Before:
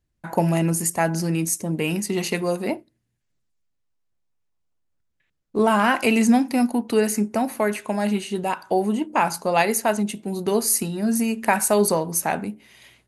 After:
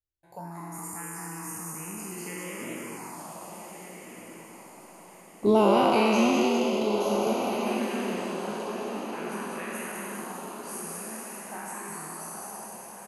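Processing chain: spectral trails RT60 2.98 s; Doppler pass-by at 4.97, 9 m/s, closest 2.2 m; frequency-shifting echo 0.202 s, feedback 57%, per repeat +140 Hz, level -4 dB; envelope phaser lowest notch 200 Hz, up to 1700 Hz, full sweep at -30 dBFS; diffused feedback echo 1.544 s, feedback 42%, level -8 dB; gain +5 dB

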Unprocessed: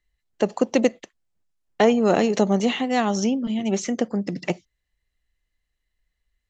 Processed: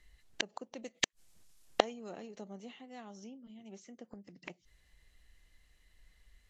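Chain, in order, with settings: 0.84–2.1 high shelf 3200 Hz +11 dB; flipped gate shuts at -22 dBFS, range -39 dB; gain +11.5 dB; Vorbis 48 kbps 32000 Hz

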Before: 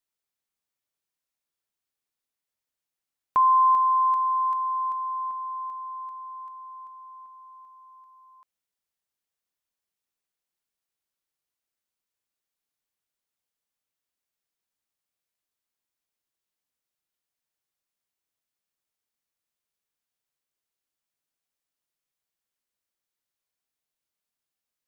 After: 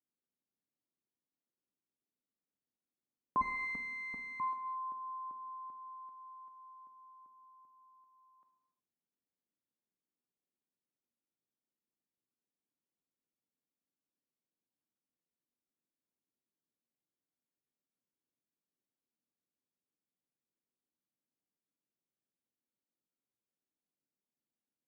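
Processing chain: 3.41–4.4 minimum comb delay 4.3 ms; band-pass 250 Hz, Q 2.2; non-linear reverb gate 0.39 s falling, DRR 4 dB; gain +6 dB

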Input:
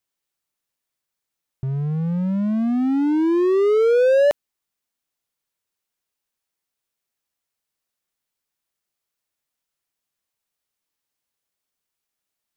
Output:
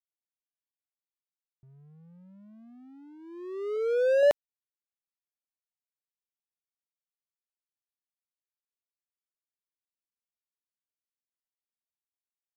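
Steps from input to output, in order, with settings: gate -14 dBFS, range -31 dB; 3.76–4.23 notch comb 630 Hz

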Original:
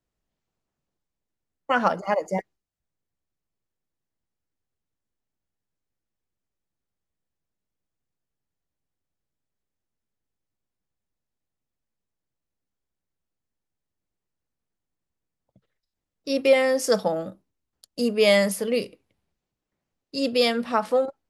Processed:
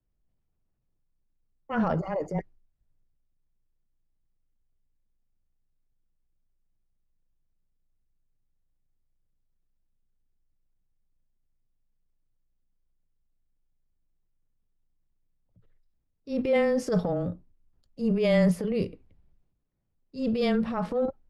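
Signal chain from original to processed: frequency shift -15 Hz; transient shaper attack -8 dB, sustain +6 dB; RIAA curve playback; gain -6.5 dB

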